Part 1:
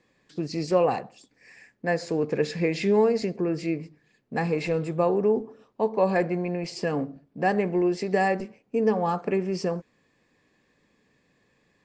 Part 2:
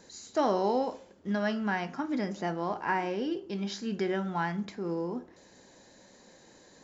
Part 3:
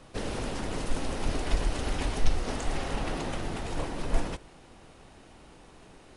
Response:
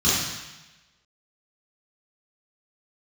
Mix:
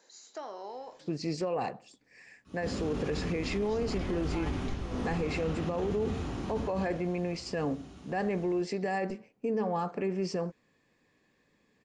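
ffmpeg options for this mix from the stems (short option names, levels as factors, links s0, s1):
-filter_complex "[0:a]adelay=700,volume=0.668[s0];[1:a]highpass=480,acompressor=threshold=0.02:ratio=3,volume=0.501,asplit=3[s1][s2][s3];[s1]atrim=end=1.24,asetpts=PTS-STARTPTS,afade=t=out:st=1.236:d=0.004:c=hsin[s4];[s2]atrim=start=1.24:end=3.5,asetpts=PTS-STARTPTS,volume=0[s5];[s3]atrim=start=3.5,asetpts=PTS-STARTPTS,afade=t=in:d=0.004:c=hsin[s6];[s4][s5][s6]concat=n=3:v=0:a=1,asplit=2[s7][s8];[2:a]acrossover=split=3100[s9][s10];[s10]acompressor=threshold=0.00282:ratio=4:attack=1:release=60[s11];[s9][s11]amix=inputs=2:normalize=0,acompressor=threshold=0.0251:ratio=2,adelay=2450,volume=0.473,asplit=2[s12][s13];[s13]volume=0.237[s14];[s8]apad=whole_len=380030[s15];[s12][s15]sidechaingate=range=0.0224:threshold=0.00178:ratio=16:detection=peak[s16];[3:a]atrim=start_sample=2205[s17];[s14][s17]afir=irnorm=-1:irlink=0[s18];[s0][s7][s16][s18]amix=inputs=4:normalize=0,alimiter=limit=0.0668:level=0:latency=1:release=18"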